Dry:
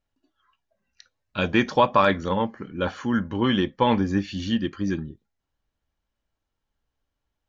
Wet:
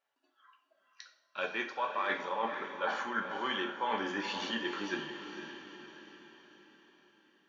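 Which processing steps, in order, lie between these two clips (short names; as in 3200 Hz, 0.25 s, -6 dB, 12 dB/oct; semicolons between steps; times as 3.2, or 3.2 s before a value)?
HPF 770 Hz 12 dB/oct; high shelf 3000 Hz -12 dB; reverse; compressor 6:1, threshold -39 dBFS, peak gain reduction 20.5 dB; reverse; diffused feedback echo 0.486 s, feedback 51%, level -8 dB; two-slope reverb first 0.5 s, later 2.4 s, from -22 dB, DRR 3.5 dB; gain +6 dB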